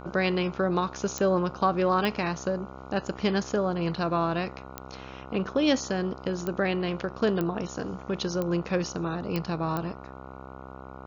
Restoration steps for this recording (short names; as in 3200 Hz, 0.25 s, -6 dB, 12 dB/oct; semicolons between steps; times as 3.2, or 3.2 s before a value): de-click; de-hum 65.6 Hz, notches 22